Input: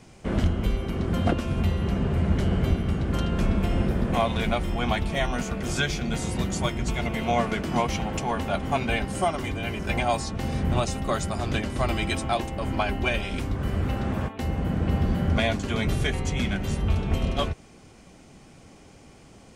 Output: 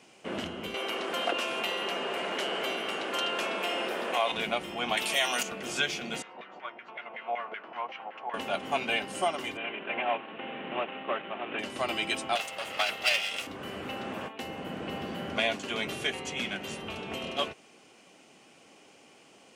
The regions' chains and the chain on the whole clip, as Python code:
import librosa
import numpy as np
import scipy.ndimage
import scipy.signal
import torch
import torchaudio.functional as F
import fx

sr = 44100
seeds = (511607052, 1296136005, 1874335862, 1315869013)

y = fx.chain(x, sr, fx.highpass(hz=500.0, slope=12),
    fx.env_flatten(amount_pct=50), at=(0.74, 4.32))
y = fx.chain(y, sr, fx.riaa(side='recording'),
    fx.env_flatten(amount_pct=50), at=(4.97, 5.43))
y = fx.chain(y, sr, fx.filter_lfo_bandpass(shape='saw_down', hz=5.3, low_hz=660.0, high_hz=2000.0, q=1.9),
    fx.air_absorb(metres=210.0), at=(6.22, 8.34))
y = fx.chain(y, sr, fx.cvsd(bps=16000),
    fx.highpass(hz=220.0, slope=12), at=(9.57, 11.59))
y = fx.chain(y, sr, fx.lower_of_two(delay_ms=1.5),
    fx.tilt_shelf(db=-6.5, hz=930.0), at=(12.35, 13.47))
y = scipy.signal.sosfilt(scipy.signal.butter(2, 330.0, 'highpass', fs=sr, output='sos'), y)
y = fx.peak_eq(y, sr, hz=2800.0, db=8.0, octaves=0.4)
y = y * 10.0 ** (-3.5 / 20.0)